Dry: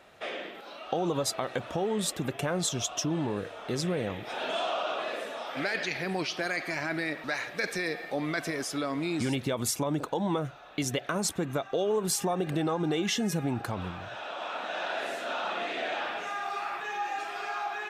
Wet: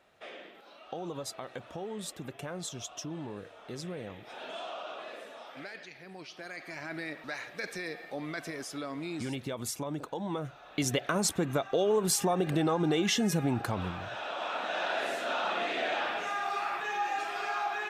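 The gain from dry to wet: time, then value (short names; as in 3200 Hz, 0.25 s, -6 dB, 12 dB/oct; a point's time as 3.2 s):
5.45 s -9.5 dB
5.96 s -17.5 dB
6.99 s -6.5 dB
10.27 s -6.5 dB
10.86 s +1 dB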